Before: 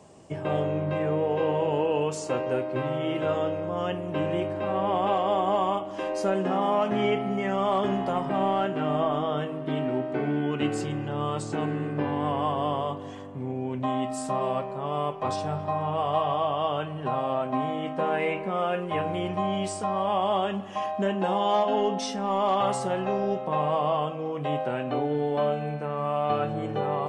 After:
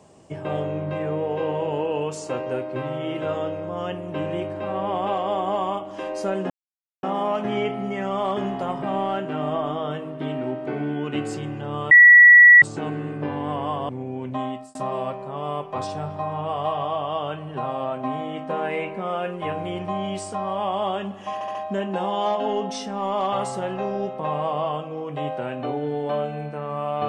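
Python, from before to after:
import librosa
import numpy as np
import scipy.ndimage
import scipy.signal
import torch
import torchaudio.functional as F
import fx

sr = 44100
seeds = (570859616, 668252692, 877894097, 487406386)

y = fx.edit(x, sr, fx.insert_silence(at_s=6.5, length_s=0.53),
    fx.insert_tone(at_s=11.38, length_s=0.71, hz=1940.0, db=-6.0),
    fx.cut(start_s=12.65, length_s=0.73),
    fx.fade_out_span(start_s=13.93, length_s=0.31),
    fx.stutter(start_s=20.83, slice_s=0.07, count=4), tone=tone)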